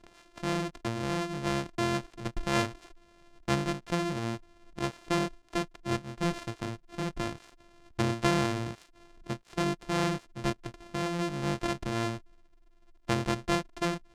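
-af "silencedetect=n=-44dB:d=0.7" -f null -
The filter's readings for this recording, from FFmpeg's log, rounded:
silence_start: 12.19
silence_end: 13.08 | silence_duration: 0.89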